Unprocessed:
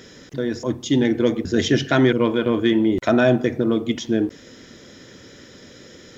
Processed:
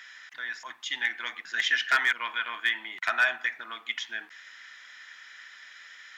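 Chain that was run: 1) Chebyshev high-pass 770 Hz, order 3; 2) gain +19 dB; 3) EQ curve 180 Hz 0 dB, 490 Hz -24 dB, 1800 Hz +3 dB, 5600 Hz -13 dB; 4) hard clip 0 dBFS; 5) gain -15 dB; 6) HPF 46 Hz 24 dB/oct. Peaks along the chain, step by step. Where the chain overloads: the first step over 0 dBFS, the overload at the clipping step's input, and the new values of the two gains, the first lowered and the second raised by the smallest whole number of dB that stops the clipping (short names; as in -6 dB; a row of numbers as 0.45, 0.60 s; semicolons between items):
-9.5, +9.5, +6.5, 0.0, -15.0, -14.5 dBFS; step 2, 6.5 dB; step 2 +12 dB, step 5 -8 dB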